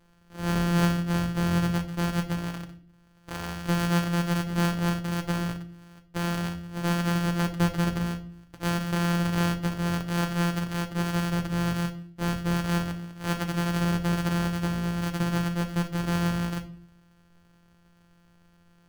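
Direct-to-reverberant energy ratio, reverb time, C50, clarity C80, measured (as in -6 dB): 5.5 dB, 0.50 s, 13.5 dB, 18.5 dB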